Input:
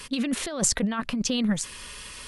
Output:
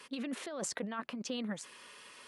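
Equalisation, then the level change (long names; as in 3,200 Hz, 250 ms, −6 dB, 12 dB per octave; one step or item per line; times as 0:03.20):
high-pass filter 310 Hz 12 dB per octave
high-shelf EQ 3,000 Hz −10.5 dB
−7.0 dB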